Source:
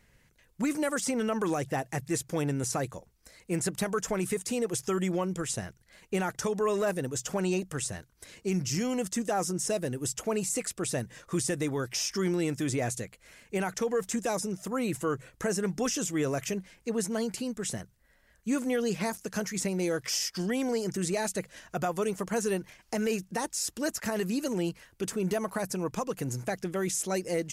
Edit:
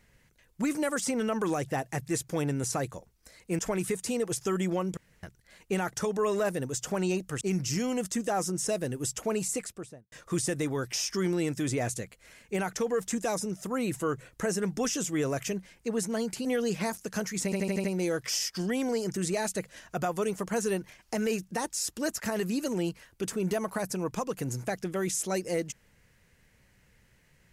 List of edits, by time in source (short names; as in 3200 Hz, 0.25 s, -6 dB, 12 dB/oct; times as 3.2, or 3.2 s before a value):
3.59–4.01 cut
5.39–5.65 room tone
7.83–8.42 cut
10.46–11.13 studio fade out
17.46–18.65 cut
19.64 stutter 0.08 s, 6 plays